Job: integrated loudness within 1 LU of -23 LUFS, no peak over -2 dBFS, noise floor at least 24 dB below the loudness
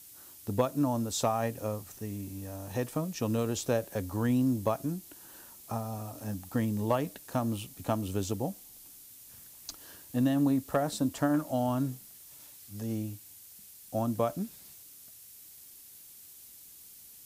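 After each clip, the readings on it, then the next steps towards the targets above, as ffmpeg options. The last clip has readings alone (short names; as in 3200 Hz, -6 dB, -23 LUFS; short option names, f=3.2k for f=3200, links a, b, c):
noise floor -52 dBFS; noise floor target -56 dBFS; loudness -32.0 LUFS; peak -14.0 dBFS; loudness target -23.0 LUFS
-> -af "afftdn=nr=6:nf=-52"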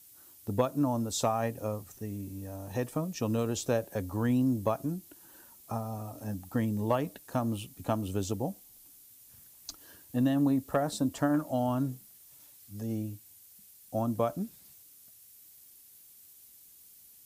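noise floor -56 dBFS; loudness -32.0 LUFS; peak -14.0 dBFS; loudness target -23.0 LUFS
-> -af "volume=9dB"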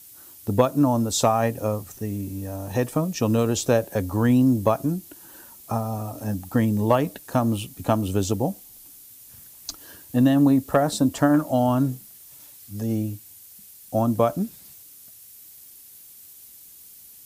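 loudness -23.0 LUFS; peak -5.0 dBFS; noise floor -47 dBFS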